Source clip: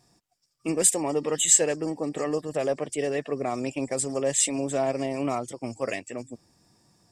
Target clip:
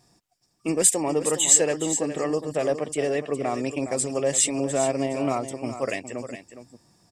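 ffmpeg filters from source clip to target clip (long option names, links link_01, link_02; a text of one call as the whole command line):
ffmpeg -i in.wav -af "aecho=1:1:413:0.282,volume=2dB" out.wav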